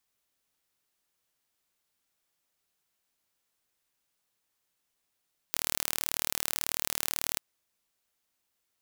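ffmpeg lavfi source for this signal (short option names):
-f lavfi -i "aevalsrc='0.75*eq(mod(n,1154),0)':d=1.84:s=44100"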